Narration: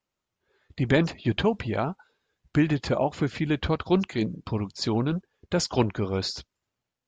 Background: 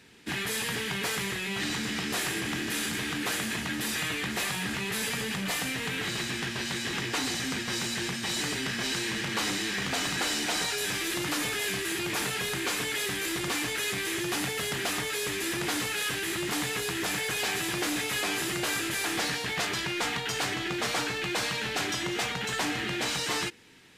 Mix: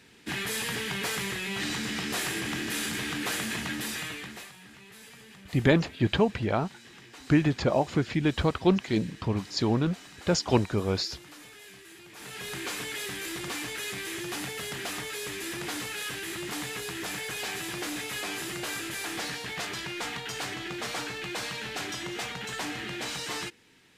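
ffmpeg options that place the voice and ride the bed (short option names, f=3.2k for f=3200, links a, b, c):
-filter_complex "[0:a]adelay=4750,volume=0dB[a];[1:a]volume=13.5dB,afade=t=out:st=3.67:d=0.85:silence=0.125893,afade=t=in:st=12.15:d=0.41:silence=0.199526[b];[a][b]amix=inputs=2:normalize=0"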